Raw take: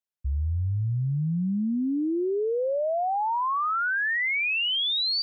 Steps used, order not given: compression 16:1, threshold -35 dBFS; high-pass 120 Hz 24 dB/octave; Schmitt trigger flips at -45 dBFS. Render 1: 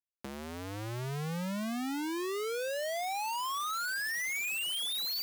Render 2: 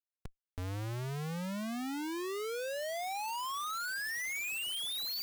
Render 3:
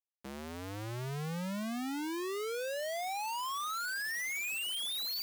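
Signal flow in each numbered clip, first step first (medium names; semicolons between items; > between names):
Schmitt trigger > compression > high-pass; compression > high-pass > Schmitt trigger; compression > Schmitt trigger > high-pass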